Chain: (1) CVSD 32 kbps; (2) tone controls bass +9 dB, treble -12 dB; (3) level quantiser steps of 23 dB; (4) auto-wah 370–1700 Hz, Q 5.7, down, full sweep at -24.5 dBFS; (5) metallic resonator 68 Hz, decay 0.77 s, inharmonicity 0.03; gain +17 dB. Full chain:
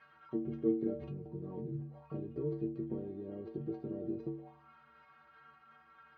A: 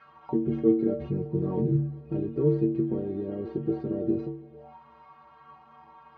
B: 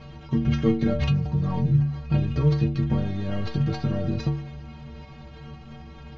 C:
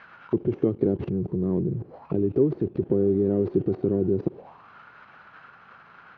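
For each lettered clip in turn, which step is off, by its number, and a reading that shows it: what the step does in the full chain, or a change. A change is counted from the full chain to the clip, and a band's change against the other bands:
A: 3, crest factor change -2.0 dB; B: 4, 125 Hz band +10.0 dB; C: 5, 1 kHz band -3.0 dB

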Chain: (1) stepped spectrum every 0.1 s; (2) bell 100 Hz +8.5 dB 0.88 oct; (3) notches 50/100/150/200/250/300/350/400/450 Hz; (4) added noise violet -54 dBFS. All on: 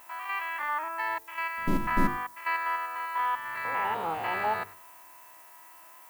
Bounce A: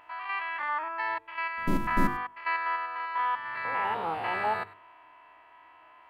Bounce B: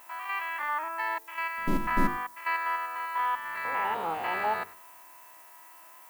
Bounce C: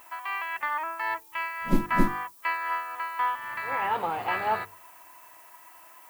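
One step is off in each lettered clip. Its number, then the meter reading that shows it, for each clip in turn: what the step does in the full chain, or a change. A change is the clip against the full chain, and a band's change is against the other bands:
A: 4, momentary loudness spread change -16 LU; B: 2, 125 Hz band -2.5 dB; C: 1, 250 Hz band +2.0 dB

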